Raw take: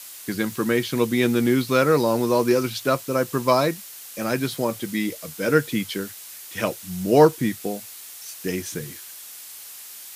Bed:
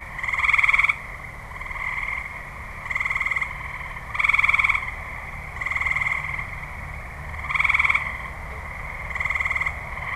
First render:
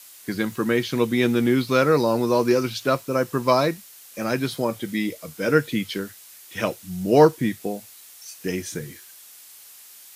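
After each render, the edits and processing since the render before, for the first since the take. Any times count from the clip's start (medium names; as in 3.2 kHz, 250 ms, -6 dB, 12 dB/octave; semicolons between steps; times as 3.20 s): noise print and reduce 6 dB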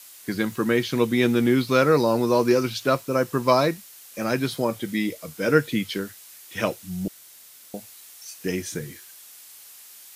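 7.08–7.74 s: room tone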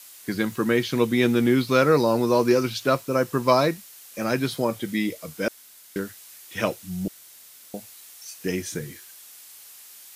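5.48–5.96 s: room tone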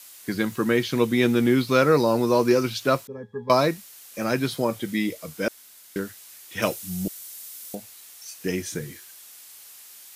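3.07–3.50 s: pitch-class resonator G#, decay 0.13 s; 6.62–7.75 s: treble shelf 4.6 kHz +9.5 dB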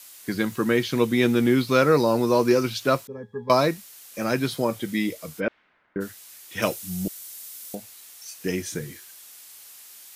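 5.39–6.00 s: low-pass 3 kHz -> 1.6 kHz 24 dB/octave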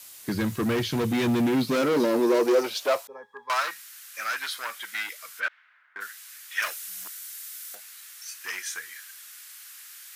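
overload inside the chain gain 23 dB; high-pass sweep 88 Hz -> 1.5 kHz, 0.98–3.76 s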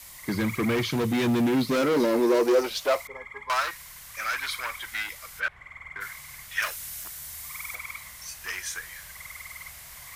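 add bed -19.5 dB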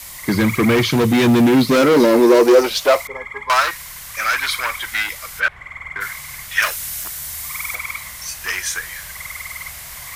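trim +10.5 dB; peak limiter -2 dBFS, peak gain reduction 1 dB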